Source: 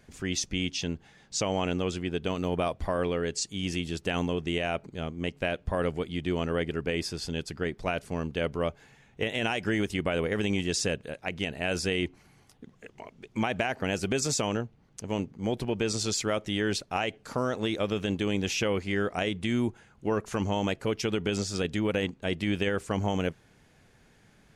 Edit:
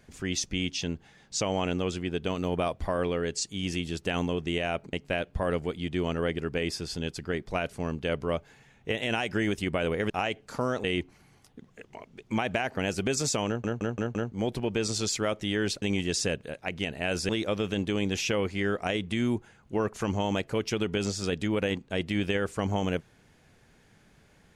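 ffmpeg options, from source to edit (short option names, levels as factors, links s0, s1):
-filter_complex "[0:a]asplit=11[s0][s1][s2][s3][s4][s5][s6][s7][s8][s9][s10];[s0]atrim=end=4.932[s11];[s1]atrim=start=5.248:end=10.422[s12];[s2]atrim=start=16.868:end=17.612[s13];[s3]atrim=start=11.888:end=14.692[s14];[s4]atrim=start=14.518:end=14.692[s15];[s5]atrim=start=14.518:end=14.692[s16];[s6]atrim=start=14.518:end=14.692[s17];[s7]atrim=start=14.518:end=14.692[s18];[s8]atrim=start=15.368:end=16.872[s19];[s9]atrim=start=10.418:end=11.892[s20];[s10]atrim=start=17.608[s21];[s11][s12]acrossfade=d=0.004:c1=hsin:c2=hsin[s22];[s22][s13]acrossfade=d=0.004:c1=hsin:c2=hsin[s23];[s23][s14]acrossfade=d=0.004:c1=hsin:c2=hsin[s24];[s24][s15]acrossfade=d=0.004:c1=hsin:c2=hsin[s25];[s25][s16]acrossfade=d=0.004:c1=hsin:c2=hsin[s26];[s26][s17]acrossfade=d=0.004:c1=hsin:c2=hsin[s27];[s27][s18]acrossfade=d=0.004:c1=hsin:c2=hsin[s28];[s28][s19]acrossfade=d=0.004:c1=hsin:c2=hsin[s29];[s29][s20]acrossfade=d=0.004:c1=hsin:c2=hsin[s30];[s30][s21]acrossfade=d=0.004:c1=hsin:c2=hsin"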